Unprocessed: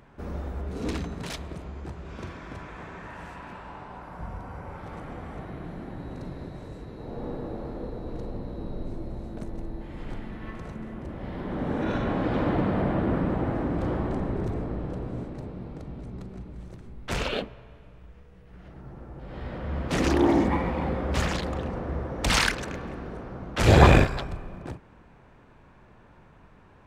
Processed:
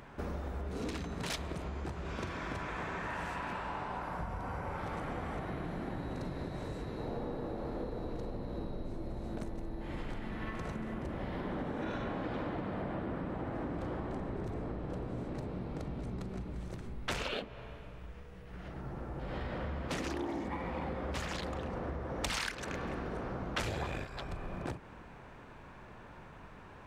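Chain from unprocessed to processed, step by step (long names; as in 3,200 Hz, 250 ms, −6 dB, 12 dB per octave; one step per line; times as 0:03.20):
downward compressor 16 to 1, threshold −36 dBFS, peak gain reduction 27 dB
low-shelf EQ 480 Hz −4.5 dB
level +5 dB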